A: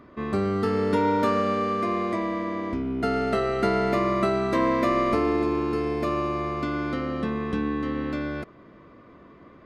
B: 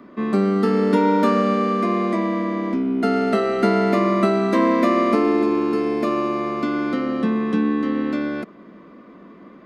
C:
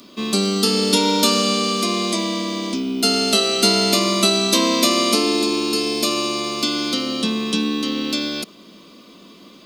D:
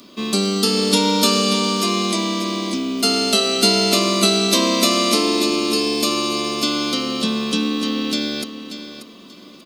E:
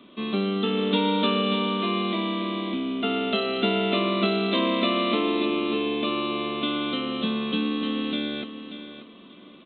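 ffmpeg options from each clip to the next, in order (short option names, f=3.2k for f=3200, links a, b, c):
-filter_complex "[0:a]lowshelf=f=150:t=q:w=3:g=-9.5,acrossover=split=130|560|2800[a][b][c][d];[a]acompressor=threshold=-51dB:ratio=6[e];[e][b][c][d]amix=inputs=4:normalize=0,volume=3.5dB"
-af "aexciter=amount=15.9:drive=6.5:freq=2.9k,volume=-2dB"
-af "aecho=1:1:586|1172|1758:0.282|0.0705|0.0176"
-af "aresample=8000,aresample=44100,volume=-5dB"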